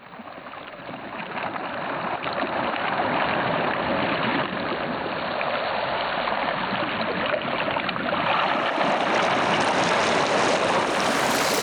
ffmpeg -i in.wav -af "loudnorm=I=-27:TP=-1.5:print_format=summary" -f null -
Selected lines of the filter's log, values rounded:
Input Integrated:    -22.9 LUFS
Input True Peak:     -10.4 dBTP
Input LRA:             4.5 LU
Input Threshold:     -33.2 LUFS